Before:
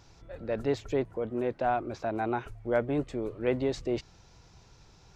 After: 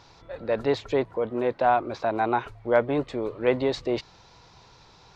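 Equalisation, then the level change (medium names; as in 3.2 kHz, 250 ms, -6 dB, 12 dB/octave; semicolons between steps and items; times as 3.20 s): graphic EQ 125/250/500/1000/2000/4000 Hz +4/+4/+7/+12/+6/+12 dB; -4.0 dB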